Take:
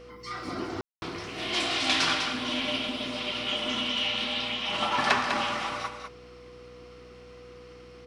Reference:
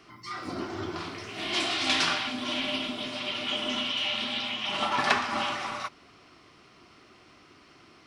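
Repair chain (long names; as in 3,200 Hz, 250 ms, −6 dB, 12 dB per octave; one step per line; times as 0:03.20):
hum removal 61.4 Hz, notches 8
notch filter 490 Hz, Q 30
ambience match 0:00.81–0:01.02
echo removal 199 ms −7 dB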